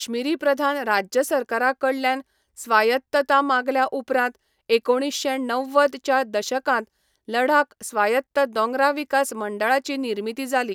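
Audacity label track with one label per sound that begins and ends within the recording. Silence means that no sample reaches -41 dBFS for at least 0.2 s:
2.570000	4.350000	sound
4.700000	6.840000	sound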